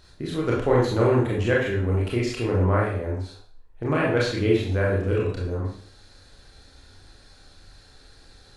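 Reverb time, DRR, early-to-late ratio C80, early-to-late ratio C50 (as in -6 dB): 0.50 s, -5.0 dB, 7.0 dB, 2.5 dB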